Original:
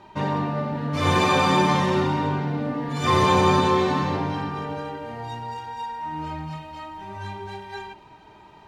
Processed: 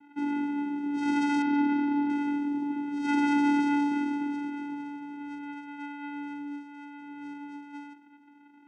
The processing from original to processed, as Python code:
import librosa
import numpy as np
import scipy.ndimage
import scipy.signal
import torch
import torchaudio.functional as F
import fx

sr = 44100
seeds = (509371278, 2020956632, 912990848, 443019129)

y = fx.env_lowpass(x, sr, base_hz=1800.0, full_db=-20.0)
y = fx.vocoder(y, sr, bands=4, carrier='square', carrier_hz=288.0)
y = fx.air_absorb(y, sr, metres=250.0, at=(1.42, 2.1))
y = y * 10.0 ** (-5.0 / 20.0)